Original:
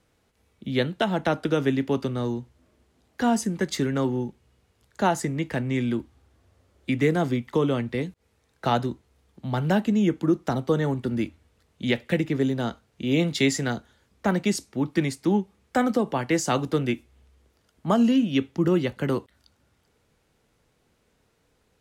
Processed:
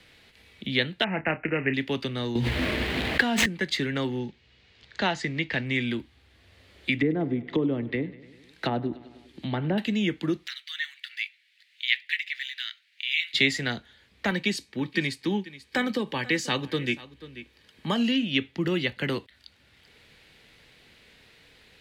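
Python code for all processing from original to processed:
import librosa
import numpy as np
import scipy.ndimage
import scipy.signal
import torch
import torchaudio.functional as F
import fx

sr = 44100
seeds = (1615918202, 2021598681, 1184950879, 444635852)

y = fx.chain(x, sr, fx.resample_bad(factor=8, down='none', up='filtered'),
    fx.doubler(ms=31.0, db=-12.0), at=(1.04, 1.74))
y = fx.chain(y, sr, fx.median_filter(points=9),
    fx.env_flatten(amount_pct=100), at=(2.35, 3.46))
y = fx.chain(y, sr, fx.block_float(bits=7),
    fx.lowpass(hz=6400.0, slope=24), at=(4.19, 5.66))
y = fx.chain(y, sr, fx.peak_eq(hz=310.0, db=8.0, octaves=0.51),
    fx.env_lowpass_down(base_hz=770.0, full_db=-19.0),
    fx.echo_feedback(ms=99, feedback_pct=60, wet_db=-19.5), at=(6.97, 9.78))
y = fx.chain(y, sr, fx.steep_highpass(hz=1800.0, slope=36),
    fx.resample_linear(factor=2), at=(10.47, 13.34))
y = fx.chain(y, sr, fx.notch_comb(f0_hz=690.0),
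    fx.echo_single(ms=487, db=-20.0), at=(14.3, 17.96))
y = fx.band_shelf(y, sr, hz=2800.0, db=12.5, octaves=1.7)
y = fx.band_squash(y, sr, depth_pct=40)
y = y * librosa.db_to_amplitude(-5.0)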